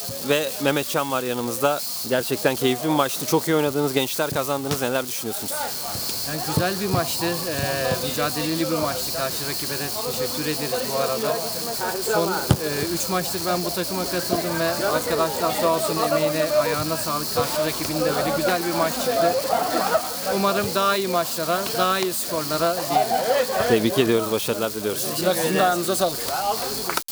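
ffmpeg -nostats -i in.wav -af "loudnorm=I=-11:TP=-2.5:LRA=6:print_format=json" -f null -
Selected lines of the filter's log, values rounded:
"input_i" : "-22.5",
"input_tp" : "-4.6",
"input_lra" : "2.5",
"input_thresh" : "-32.5",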